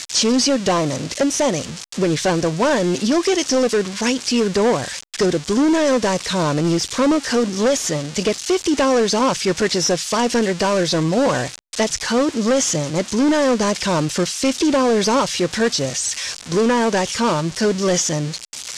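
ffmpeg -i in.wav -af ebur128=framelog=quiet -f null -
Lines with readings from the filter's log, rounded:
Integrated loudness:
  I:         -18.5 LUFS
  Threshold: -28.5 LUFS
Loudness range:
  LRA:         0.9 LU
  Threshold: -38.5 LUFS
  LRA low:   -18.9 LUFS
  LRA high:  -18.0 LUFS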